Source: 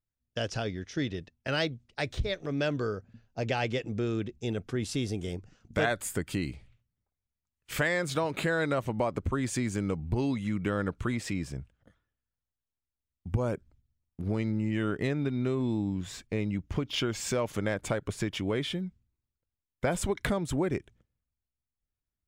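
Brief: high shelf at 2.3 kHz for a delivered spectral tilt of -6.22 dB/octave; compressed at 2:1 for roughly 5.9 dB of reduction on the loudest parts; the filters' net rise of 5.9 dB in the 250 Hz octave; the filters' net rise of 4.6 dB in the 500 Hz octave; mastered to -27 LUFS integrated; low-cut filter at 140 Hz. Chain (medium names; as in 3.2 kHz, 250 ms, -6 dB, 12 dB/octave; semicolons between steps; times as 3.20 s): high-pass 140 Hz; peaking EQ 250 Hz +7 dB; peaking EQ 500 Hz +4 dB; treble shelf 2.3 kHz -8 dB; compression 2:1, threshold -31 dBFS; trim +6.5 dB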